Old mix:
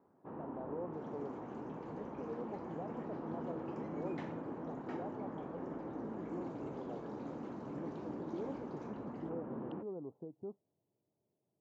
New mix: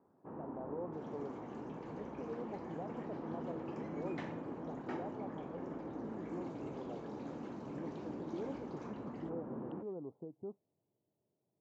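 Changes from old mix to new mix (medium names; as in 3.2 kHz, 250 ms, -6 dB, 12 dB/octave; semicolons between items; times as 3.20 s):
first sound: add distance through air 330 m; second sound +3.5 dB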